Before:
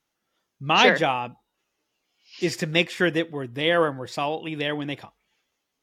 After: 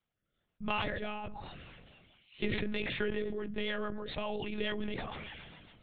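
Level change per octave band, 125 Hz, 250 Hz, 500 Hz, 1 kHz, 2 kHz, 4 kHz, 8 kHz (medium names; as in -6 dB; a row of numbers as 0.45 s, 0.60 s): -11.0 dB, -10.0 dB, -12.5 dB, -15.5 dB, -14.0 dB, -14.0 dB, under -40 dB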